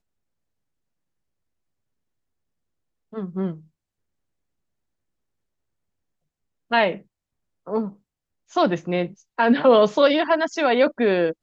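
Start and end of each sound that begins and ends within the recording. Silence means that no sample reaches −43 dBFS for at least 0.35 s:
0:03.13–0:03.61
0:06.71–0:07.02
0:07.67–0:07.93

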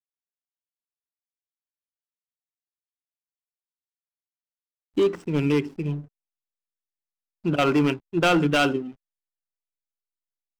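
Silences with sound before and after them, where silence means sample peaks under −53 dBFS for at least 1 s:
0:06.08–0:07.44

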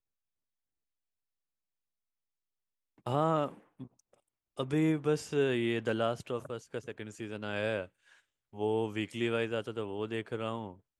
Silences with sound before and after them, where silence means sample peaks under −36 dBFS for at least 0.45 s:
0:03.84–0:04.59
0:07.84–0:08.57

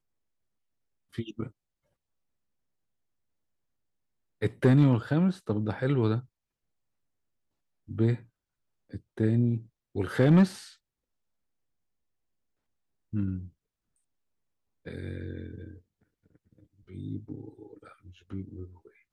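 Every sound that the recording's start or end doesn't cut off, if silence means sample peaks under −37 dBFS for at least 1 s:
0:01.15–0:01.47
0:04.42–0:06.20
0:07.89–0:10.63
0:13.13–0:13.45
0:14.87–0:15.71

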